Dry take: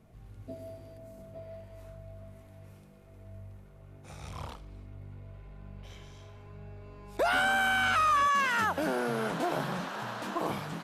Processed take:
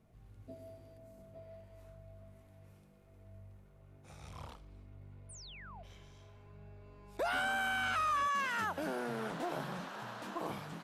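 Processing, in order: 5.29–5.83 painted sound fall 610–10000 Hz -45 dBFS; 9.02–9.49 Doppler distortion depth 0.19 ms; gain -7.5 dB

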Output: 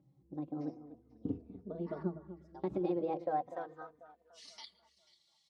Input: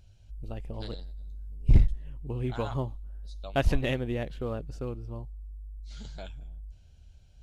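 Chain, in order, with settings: HPF 95 Hz 12 dB/oct; notches 60/120/180/240/300/360 Hz; compressor 6:1, threshold -30 dBFS, peak gain reduction 10 dB; band-pass sweep 230 Hz -> 2900 Hz, 3.77–6.09; on a send: echo with dull and thin repeats by turns 0.331 s, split 1200 Hz, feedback 52%, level -13 dB; on the sum: speed mistake 33 rpm record played at 45 rpm; endless flanger 3.2 ms -0.35 Hz; gain +8.5 dB

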